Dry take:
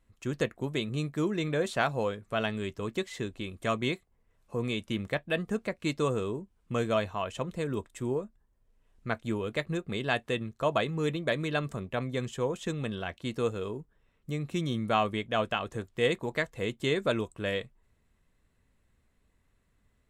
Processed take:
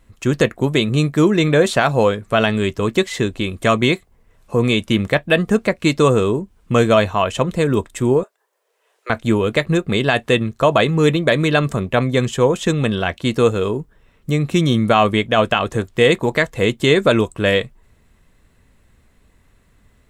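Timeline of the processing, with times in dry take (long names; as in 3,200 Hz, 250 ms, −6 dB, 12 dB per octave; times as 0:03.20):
0:08.23–0:09.10: Butterworth high-pass 410 Hz 48 dB per octave
whole clip: boost into a limiter +17.5 dB; level −2 dB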